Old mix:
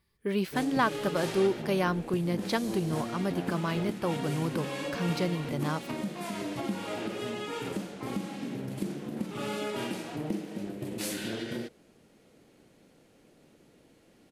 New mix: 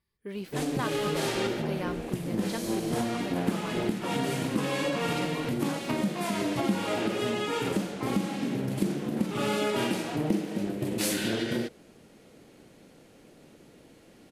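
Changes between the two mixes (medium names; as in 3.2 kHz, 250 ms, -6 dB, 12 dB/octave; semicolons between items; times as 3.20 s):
speech -8.0 dB; background +6.0 dB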